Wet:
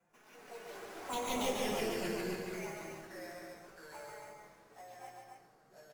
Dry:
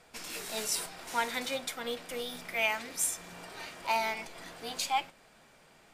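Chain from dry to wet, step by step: wind noise 100 Hz -50 dBFS; Doppler pass-by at 1.36 s, 15 m/s, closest 1.3 m; three-band isolator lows -21 dB, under 160 Hz, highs -19 dB, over 2.4 kHz; hum notches 60/120/180/240 Hz; in parallel at -1 dB: compression, threshold -55 dBFS, peak gain reduction 19 dB; on the sum: sample-rate reducer 8.5 kHz, jitter 0%; wavefolder -34 dBFS; touch-sensitive flanger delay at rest 6 ms, full sweep at -41.5 dBFS; doubling 19 ms -11 dB; ever faster or slower copies 94 ms, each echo -3 st, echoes 2; loudspeakers at several distances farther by 49 m -4 dB, 95 m -5 dB; reverberation RT60 1.5 s, pre-delay 5 ms, DRR 5.5 dB; trim +5.5 dB

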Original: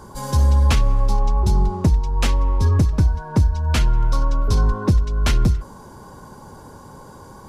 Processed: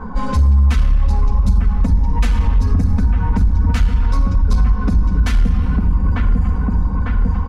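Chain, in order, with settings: on a send: feedback echo behind a low-pass 899 ms, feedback 57%, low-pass 1.7 kHz, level -7 dB; on the sum: reverb removal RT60 1.7 s; level-controlled noise filter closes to 1.6 kHz, open at -17.5 dBFS; peaking EQ 1.3 kHz +10.5 dB 1.9 oct; comb 4 ms, depth 98%; simulated room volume 3100 m³, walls mixed, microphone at 1.6 m; compression, threshold -19 dBFS, peak gain reduction 14 dB; saturation -18 dBFS, distortion -16 dB; tone controls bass +12 dB, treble +2 dB

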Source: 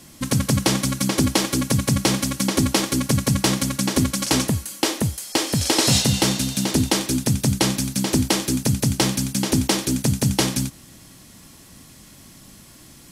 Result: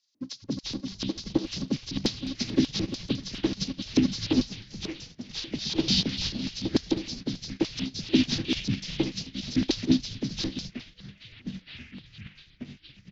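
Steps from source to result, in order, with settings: knee-point frequency compression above 1.8 kHz 1.5:1; in parallel at +1 dB: peak limiter -15 dBFS, peak gain reduction 10 dB; on the sum: LFO band-pass square 3.4 Hz 300–4700 Hz; on a send: frequency-shifting echo 209 ms, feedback 54%, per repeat -150 Hz, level -9 dB; on the sum: ever faster or slower copies 599 ms, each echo -5 st, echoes 3, each echo -6 dB; upward expansion 2.5:1, over -35 dBFS

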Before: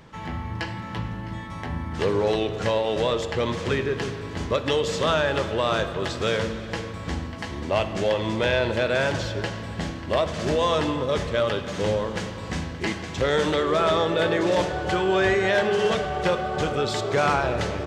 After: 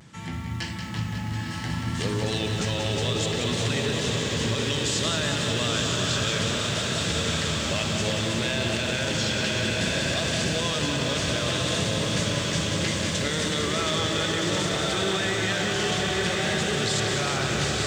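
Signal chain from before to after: graphic EQ 125/500/1000/8000 Hz +4/-8/-6/+11 dB; on a send: echo that smears into a reverb 964 ms, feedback 61%, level -3.5 dB; on the sum: vibrato 0.62 Hz 44 cents; high-pass 91 Hz; peak limiter -19 dBFS, peak gain reduction 9 dB; dynamic bell 4.2 kHz, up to +4 dB, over -42 dBFS, Q 0.85; bit-crushed delay 183 ms, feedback 80%, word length 9-bit, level -6.5 dB

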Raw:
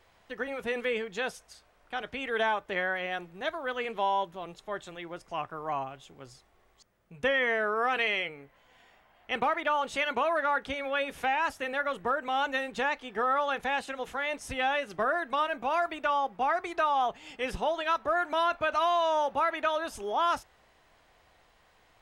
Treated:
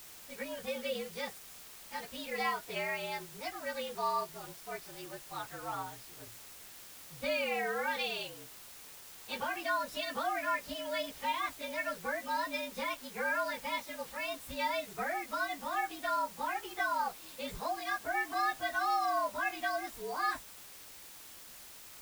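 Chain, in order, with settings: frequency axis rescaled in octaves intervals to 113%; word length cut 8-bit, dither triangular; trim -3.5 dB

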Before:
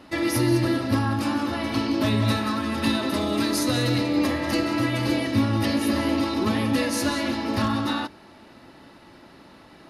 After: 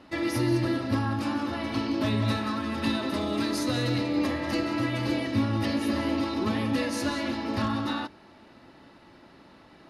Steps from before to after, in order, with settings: treble shelf 10 kHz -12 dB; trim -4 dB

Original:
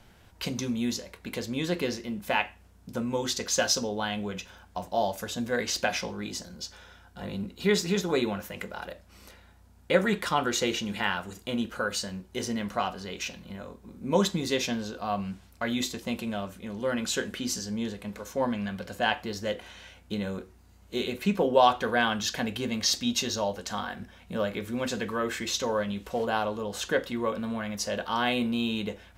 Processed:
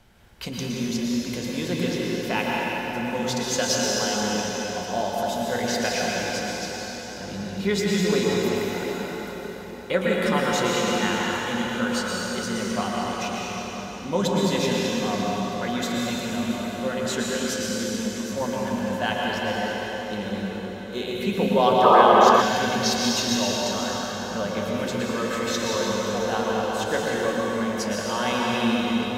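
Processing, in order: plate-style reverb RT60 5 s, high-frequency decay 0.8×, pre-delay 100 ms, DRR -4.5 dB; painted sound noise, 21.83–22.42 s, 340–1300 Hz -14 dBFS; trim -1 dB

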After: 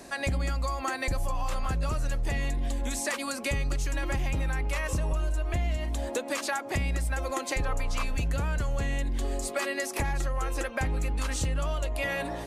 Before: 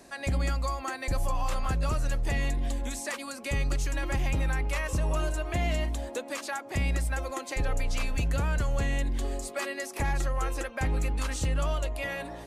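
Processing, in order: 5.12–5.77 s: bass shelf 74 Hz +11.5 dB; compression, threshold -32 dBFS, peak gain reduction 13 dB; 7.62–8.04 s: peaking EQ 1.1 kHz +10.5 dB 0.57 oct; trim +6 dB

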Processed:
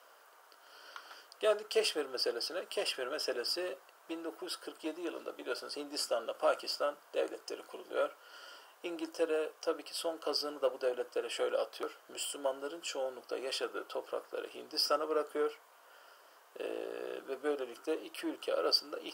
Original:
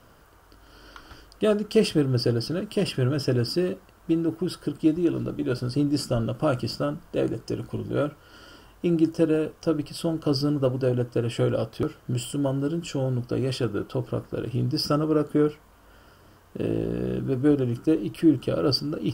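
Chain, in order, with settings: in parallel at -12 dB: saturation -25 dBFS, distortion -8 dB; on the sum: high-pass 510 Hz 24 dB/octave; trim -4.5 dB

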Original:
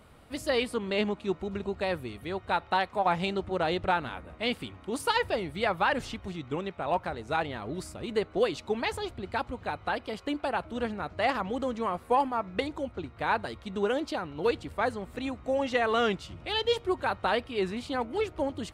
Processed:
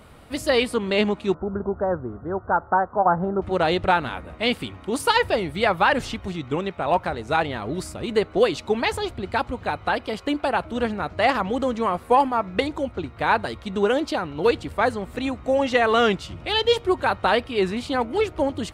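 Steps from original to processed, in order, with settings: 1.34–3.42 s: elliptic low-pass 1.5 kHz, stop band 40 dB; trim +7.5 dB

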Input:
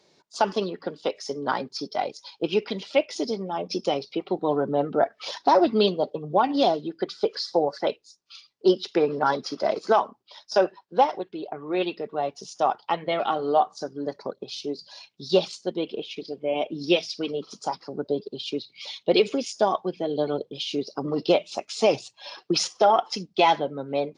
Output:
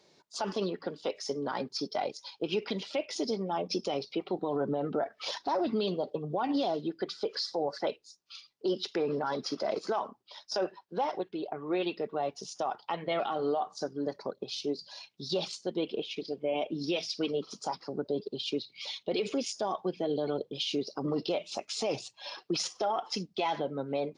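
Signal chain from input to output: peak limiter -20 dBFS, peak gain reduction 11.5 dB; trim -2 dB

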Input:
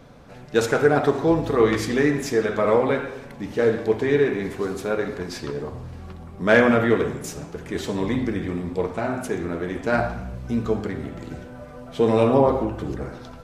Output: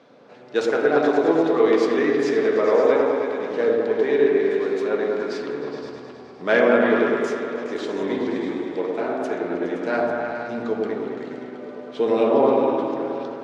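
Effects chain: chunks repeated in reverse 509 ms, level -14 dB; Chebyshev band-pass 330–4500 Hz, order 2; delay with an opening low-pass 104 ms, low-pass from 750 Hz, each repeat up 1 oct, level 0 dB; trim -2 dB

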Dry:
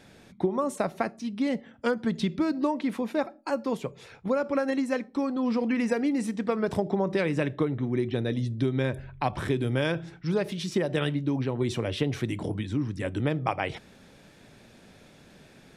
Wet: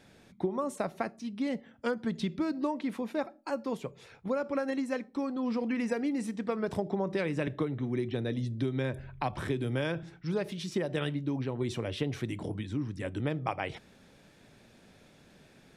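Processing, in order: 7.47–10.03 s: three bands compressed up and down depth 40%; trim -5 dB

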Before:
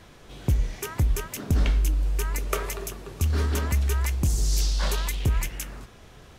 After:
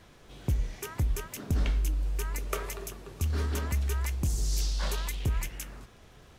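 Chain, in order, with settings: crackle 75 per s -49 dBFS; trim -5.5 dB

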